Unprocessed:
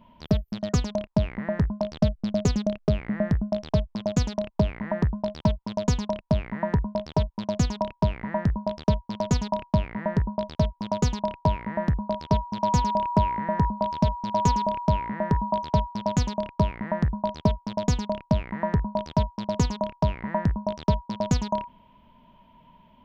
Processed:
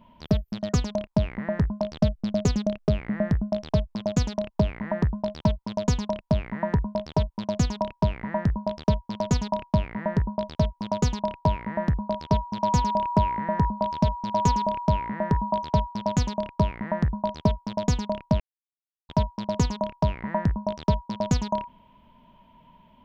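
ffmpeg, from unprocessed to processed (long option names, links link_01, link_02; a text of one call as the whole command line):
ffmpeg -i in.wav -filter_complex "[0:a]asplit=3[link_01][link_02][link_03];[link_01]atrim=end=18.4,asetpts=PTS-STARTPTS,afade=type=out:start_time=18.396:duration=0.004:curve=hsin[link_04];[link_02]atrim=start=18.4:end=19.09,asetpts=PTS-STARTPTS,volume=0[link_05];[link_03]atrim=start=19.09,asetpts=PTS-STARTPTS,afade=type=in:duration=0.004:curve=hsin[link_06];[link_04][link_05][link_06]concat=n=3:v=0:a=1" out.wav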